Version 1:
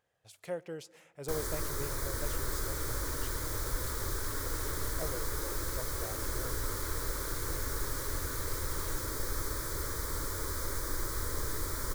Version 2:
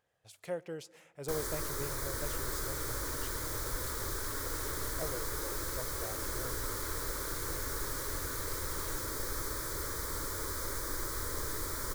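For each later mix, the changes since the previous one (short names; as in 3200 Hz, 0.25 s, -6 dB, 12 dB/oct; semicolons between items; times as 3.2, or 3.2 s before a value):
first sound: add low shelf 170 Hz -5 dB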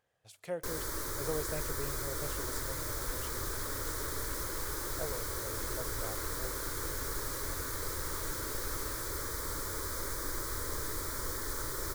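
first sound: entry -0.65 s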